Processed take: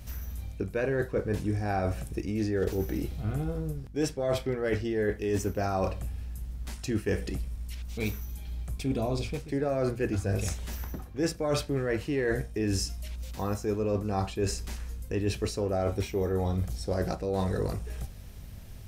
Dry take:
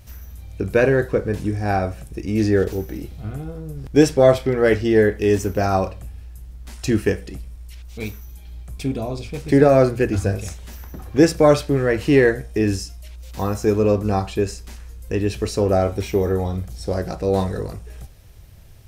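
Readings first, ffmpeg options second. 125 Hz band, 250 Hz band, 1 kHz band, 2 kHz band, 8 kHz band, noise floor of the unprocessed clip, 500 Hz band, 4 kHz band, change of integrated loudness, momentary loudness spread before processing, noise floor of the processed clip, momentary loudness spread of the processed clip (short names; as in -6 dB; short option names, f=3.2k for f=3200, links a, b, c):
-8.0 dB, -11.0 dB, -10.5 dB, -11.0 dB, -5.0 dB, -41 dBFS, -12.0 dB, -6.5 dB, -11.5 dB, 22 LU, -44 dBFS, 10 LU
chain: -af "areverse,acompressor=threshold=-25dB:ratio=16,areverse,aeval=exprs='val(0)+0.00398*(sin(2*PI*50*n/s)+sin(2*PI*2*50*n/s)/2+sin(2*PI*3*50*n/s)/3+sin(2*PI*4*50*n/s)/4+sin(2*PI*5*50*n/s)/5)':c=same"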